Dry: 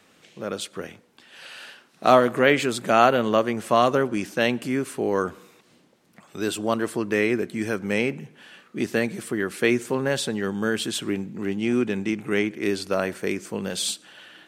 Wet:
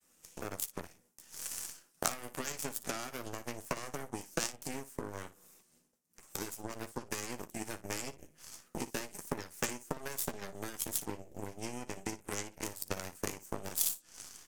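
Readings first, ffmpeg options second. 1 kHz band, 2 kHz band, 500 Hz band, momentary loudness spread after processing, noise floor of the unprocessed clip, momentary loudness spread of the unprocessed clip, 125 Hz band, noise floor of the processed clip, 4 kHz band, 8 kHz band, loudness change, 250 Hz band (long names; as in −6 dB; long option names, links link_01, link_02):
−18.5 dB, −17.0 dB, −20.5 dB, 10 LU, −58 dBFS, 15 LU, −14.0 dB, −71 dBFS, −13.5 dB, −2.5 dB, −15.5 dB, −19.0 dB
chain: -filter_complex "[0:a]bandreject=frequency=2200:width=29,agate=range=-33dB:threshold=-53dB:ratio=3:detection=peak,lowshelf=frequency=68:gain=9.5,acrossover=split=330|6600[link_01][link_02][link_03];[link_01]acompressor=threshold=-27dB:ratio=4[link_04];[link_02]acompressor=threshold=-22dB:ratio=4[link_05];[link_03]acompressor=threshold=-52dB:ratio=4[link_06];[link_04][link_05][link_06]amix=inputs=3:normalize=0,acrossover=split=280|1100[link_07][link_08][link_09];[link_08]alimiter=limit=-23.5dB:level=0:latency=1:release=182[link_10];[link_07][link_10][link_09]amix=inputs=3:normalize=0,acompressor=threshold=-41dB:ratio=5,flanger=delay=3.3:depth=3.5:regen=-65:speed=0.31:shape=triangular,aeval=exprs='0.0211*(cos(1*acos(clip(val(0)/0.0211,-1,1)))-cos(1*PI/2))+0.0075*(cos(3*acos(clip(val(0)/0.0211,-1,1)))-cos(3*PI/2))+0.000596*(cos(6*acos(clip(val(0)/0.0211,-1,1)))-cos(6*PI/2))':channel_layout=same,aexciter=amount=8.3:drive=1.5:freq=5500,asplit=2[link_11][link_12];[link_12]aecho=0:1:12|58:0.316|0.168[link_13];[link_11][link_13]amix=inputs=2:normalize=0,volume=14dB"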